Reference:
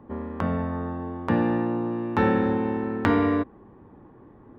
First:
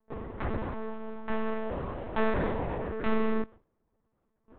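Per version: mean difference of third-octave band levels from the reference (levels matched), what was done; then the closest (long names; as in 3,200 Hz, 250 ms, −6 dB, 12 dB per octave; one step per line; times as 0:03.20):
6.0 dB: lower of the sound and its delayed copy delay 6.7 ms
noise gate with hold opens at −39 dBFS
one-pitch LPC vocoder at 8 kHz 220 Hz
level −3.5 dB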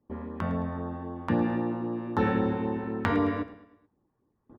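3.0 dB: noise gate with hold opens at −37 dBFS
auto-filter notch sine 3.8 Hz 290–2,500 Hz
on a send: repeating echo 108 ms, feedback 47%, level −15 dB
on the sum: level −3 dB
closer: second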